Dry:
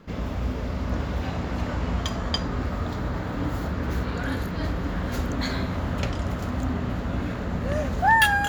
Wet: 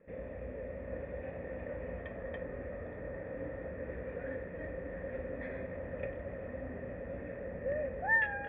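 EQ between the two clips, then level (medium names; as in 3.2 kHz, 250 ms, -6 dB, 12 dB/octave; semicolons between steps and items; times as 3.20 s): cascade formant filter e; low-pass 3.4 kHz; +1.0 dB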